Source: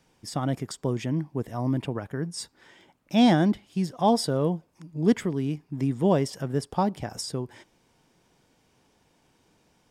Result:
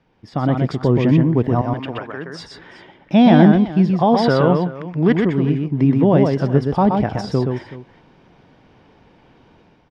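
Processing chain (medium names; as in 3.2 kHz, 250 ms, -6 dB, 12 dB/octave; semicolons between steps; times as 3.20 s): 1.61–2.40 s: high-pass 1.4 kHz 6 dB/octave; 4.14–5.15 s: peaking EQ 1.9 kHz +13.5 dB 2.3 oct; level rider gain up to 10 dB; peak limiter -8.5 dBFS, peak gain reduction 7 dB; distance through air 300 m; multi-tap echo 124/376 ms -4/-16.5 dB; trim +4 dB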